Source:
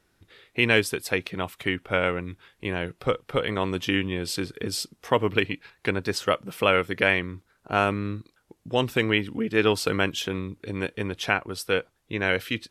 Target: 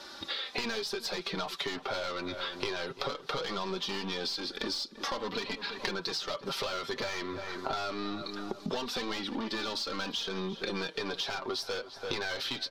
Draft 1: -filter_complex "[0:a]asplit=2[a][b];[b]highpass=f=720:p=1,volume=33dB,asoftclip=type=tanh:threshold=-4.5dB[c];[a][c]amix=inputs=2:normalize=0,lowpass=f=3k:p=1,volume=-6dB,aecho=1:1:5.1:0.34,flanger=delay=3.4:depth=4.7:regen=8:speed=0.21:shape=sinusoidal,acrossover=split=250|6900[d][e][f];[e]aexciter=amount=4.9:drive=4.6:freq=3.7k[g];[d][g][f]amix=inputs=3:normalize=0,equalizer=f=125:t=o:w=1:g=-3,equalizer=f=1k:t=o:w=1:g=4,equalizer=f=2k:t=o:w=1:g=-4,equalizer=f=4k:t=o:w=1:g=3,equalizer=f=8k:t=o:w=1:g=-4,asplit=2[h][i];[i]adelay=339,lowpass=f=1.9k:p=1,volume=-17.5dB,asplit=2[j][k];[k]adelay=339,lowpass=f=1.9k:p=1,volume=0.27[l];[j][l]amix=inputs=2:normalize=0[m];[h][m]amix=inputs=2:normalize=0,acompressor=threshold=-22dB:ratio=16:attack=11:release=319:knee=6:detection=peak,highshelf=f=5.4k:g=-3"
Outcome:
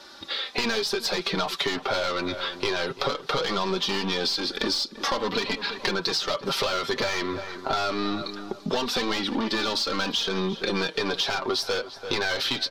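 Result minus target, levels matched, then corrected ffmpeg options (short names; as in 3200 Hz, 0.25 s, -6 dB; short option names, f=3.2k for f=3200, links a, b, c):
compressor: peak gain reduction -8.5 dB
-filter_complex "[0:a]asplit=2[a][b];[b]highpass=f=720:p=1,volume=33dB,asoftclip=type=tanh:threshold=-4.5dB[c];[a][c]amix=inputs=2:normalize=0,lowpass=f=3k:p=1,volume=-6dB,aecho=1:1:5.1:0.34,flanger=delay=3.4:depth=4.7:regen=8:speed=0.21:shape=sinusoidal,acrossover=split=250|6900[d][e][f];[e]aexciter=amount=4.9:drive=4.6:freq=3.7k[g];[d][g][f]amix=inputs=3:normalize=0,equalizer=f=125:t=o:w=1:g=-3,equalizer=f=1k:t=o:w=1:g=4,equalizer=f=2k:t=o:w=1:g=-4,equalizer=f=4k:t=o:w=1:g=3,equalizer=f=8k:t=o:w=1:g=-4,asplit=2[h][i];[i]adelay=339,lowpass=f=1.9k:p=1,volume=-17.5dB,asplit=2[j][k];[k]adelay=339,lowpass=f=1.9k:p=1,volume=0.27[l];[j][l]amix=inputs=2:normalize=0[m];[h][m]amix=inputs=2:normalize=0,acompressor=threshold=-31dB:ratio=16:attack=11:release=319:knee=6:detection=peak,highshelf=f=5.4k:g=-3"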